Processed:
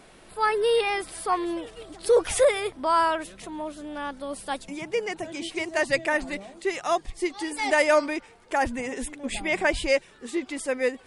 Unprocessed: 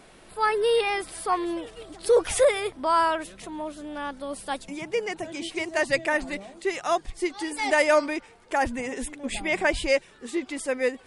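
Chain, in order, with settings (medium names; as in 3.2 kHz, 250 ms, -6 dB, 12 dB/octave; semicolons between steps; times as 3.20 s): 6.84–7.44 s: band-stop 1.5 kHz, Q 11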